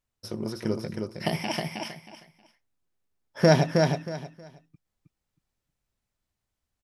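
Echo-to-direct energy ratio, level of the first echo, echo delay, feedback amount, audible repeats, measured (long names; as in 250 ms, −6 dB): −4.0 dB, −4.0 dB, 316 ms, 23%, 3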